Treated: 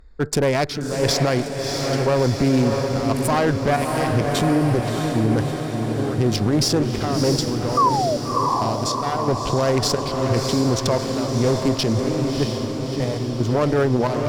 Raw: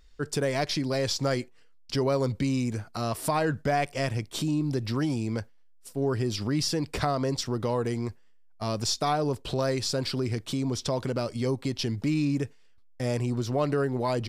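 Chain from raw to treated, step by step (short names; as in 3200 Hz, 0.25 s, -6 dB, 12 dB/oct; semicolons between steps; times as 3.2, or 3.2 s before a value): Wiener smoothing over 15 samples; 7.37–9.03 compressor, threshold -34 dBFS, peak gain reduction 10 dB; one-sided clip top -30.5 dBFS, bottom -17 dBFS; 7.77–8.17 painted sound fall 560–1200 Hz -23 dBFS; chopper 0.97 Hz, depth 65%, duty 65%; diffused feedback echo 0.651 s, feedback 64%, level -5 dB; maximiser +19 dB; gain -8 dB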